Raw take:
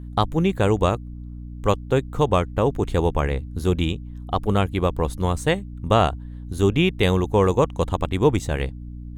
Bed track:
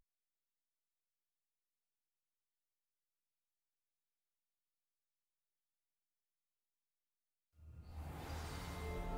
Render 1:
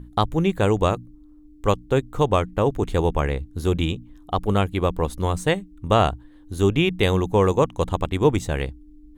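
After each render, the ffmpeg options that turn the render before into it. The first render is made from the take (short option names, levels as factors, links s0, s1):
-af "bandreject=f=60:t=h:w=6,bandreject=f=120:t=h:w=6,bandreject=f=180:t=h:w=6,bandreject=f=240:t=h:w=6"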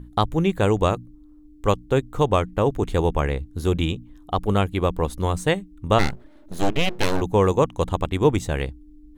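-filter_complex "[0:a]asplit=3[s0][s1][s2];[s0]afade=t=out:st=5.98:d=0.02[s3];[s1]aeval=exprs='abs(val(0))':c=same,afade=t=in:st=5.98:d=0.02,afade=t=out:st=7.2:d=0.02[s4];[s2]afade=t=in:st=7.2:d=0.02[s5];[s3][s4][s5]amix=inputs=3:normalize=0"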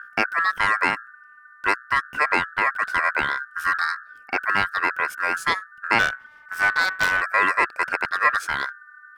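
-filter_complex "[0:a]asplit=2[s0][s1];[s1]volume=10,asoftclip=hard,volume=0.1,volume=0.251[s2];[s0][s2]amix=inputs=2:normalize=0,aeval=exprs='val(0)*sin(2*PI*1500*n/s)':c=same"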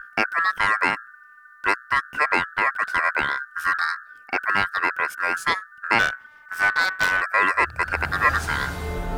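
-filter_complex "[1:a]volume=6.31[s0];[0:a][s0]amix=inputs=2:normalize=0"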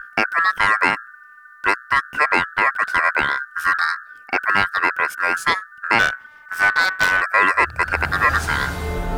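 -af "volume=1.58,alimiter=limit=0.708:level=0:latency=1"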